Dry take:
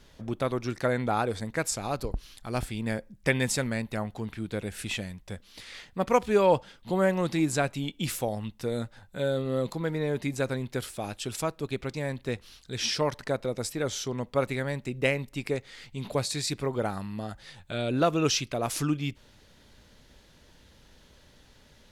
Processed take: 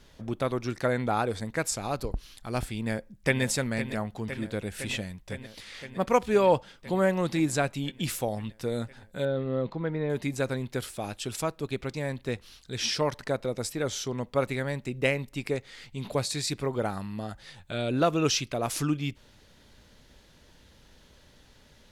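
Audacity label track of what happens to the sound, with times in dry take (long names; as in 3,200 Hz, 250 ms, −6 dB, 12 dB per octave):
2.760000	3.420000	delay throw 510 ms, feedback 80%, level −11 dB
9.250000	10.100000	high-frequency loss of the air 300 metres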